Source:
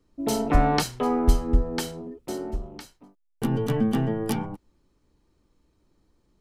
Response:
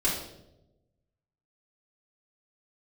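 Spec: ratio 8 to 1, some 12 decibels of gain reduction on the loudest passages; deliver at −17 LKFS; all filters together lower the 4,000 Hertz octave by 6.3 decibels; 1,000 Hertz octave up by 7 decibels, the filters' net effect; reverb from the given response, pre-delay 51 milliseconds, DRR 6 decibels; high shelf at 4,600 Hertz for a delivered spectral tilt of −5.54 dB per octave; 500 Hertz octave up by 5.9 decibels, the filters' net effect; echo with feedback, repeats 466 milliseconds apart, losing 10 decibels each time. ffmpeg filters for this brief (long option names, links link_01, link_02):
-filter_complex "[0:a]equalizer=frequency=500:width_type=o:gain=5.5,equalizer=frequency=1000:width_type=o:gain=8,equalizer=frequency=4000:width_type=o:gain=-5.5,highshelf=frequency=4600:gain=-6,acompressor=threshold=-23dB:ratio=8,aecho=1:1:466|932|1398|1864:0.316|0.101|0.0324|0.0104,asplit=2[link_01][link_02];[1:a]atrim=start_sample=2205,adelay=51[link_03];[link_02][link_03]afir=irnorm=-1:irlink=0,volume=-16dB[link_04];[link_01][link_04]amix=inputs=2:normalize=0,volume=11.5dB"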